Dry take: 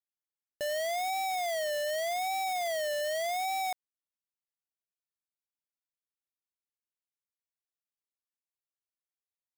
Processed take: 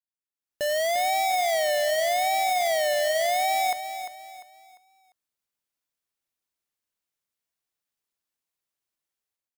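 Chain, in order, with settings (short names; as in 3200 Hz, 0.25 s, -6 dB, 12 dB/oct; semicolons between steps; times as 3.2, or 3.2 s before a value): AGC gain up to 16 dB; feedback echo 0.348 s, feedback 34%, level -10 dB; gain -8.5 dB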